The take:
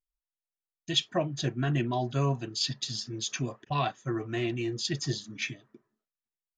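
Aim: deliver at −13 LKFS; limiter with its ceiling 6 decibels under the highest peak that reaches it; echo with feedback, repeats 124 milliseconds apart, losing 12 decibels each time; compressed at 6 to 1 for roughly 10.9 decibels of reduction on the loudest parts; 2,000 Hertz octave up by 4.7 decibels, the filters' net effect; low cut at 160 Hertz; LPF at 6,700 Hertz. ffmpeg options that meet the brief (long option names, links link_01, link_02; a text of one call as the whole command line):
ffmpeg -i in.wav -af "highpass=160,lowpass=6700,equalizer=frequency=2000:width_type=o:gain=6,acompressor=threshold=-31dB:ratio=6,alimiter=level_in=2.5dB:limit=-24dB:level=0:latency=1,volume=-2.5dB,aecho=1:1:124|248|372:0.251|0.0628|0.0157,volume=24dB" out.wav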